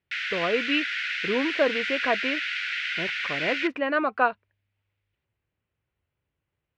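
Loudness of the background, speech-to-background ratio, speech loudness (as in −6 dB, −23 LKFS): −28.0 LKFS, 0.5 dB, −27.5 LKFS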